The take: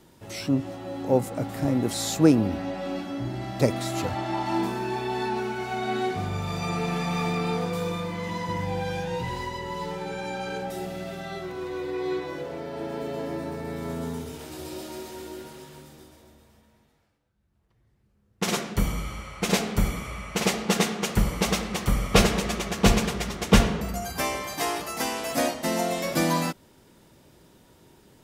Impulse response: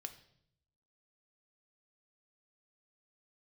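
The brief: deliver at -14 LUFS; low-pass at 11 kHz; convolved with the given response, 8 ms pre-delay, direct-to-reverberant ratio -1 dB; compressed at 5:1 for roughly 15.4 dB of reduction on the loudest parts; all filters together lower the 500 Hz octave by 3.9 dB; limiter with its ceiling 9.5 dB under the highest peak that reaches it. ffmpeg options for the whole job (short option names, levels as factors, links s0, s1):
-filter_complex "[0:a]lowpass=11000,equalizer=f=500:t=o:g=-5,acompressor=threshold=0.0316:ratio=5,alimiter=level_in=1.41:limit=0.0631:level=0:latency=1,volume=0.708,asplit=2[s0][s1];[1:a]atrim=start_sample=2205,adelay=8[s2];[s1][s2]afir=irnorm=-1:irlink=0,volume=1.78[s3];[s0][s3]amix=inputs=2:normalize=0,volume=8.91"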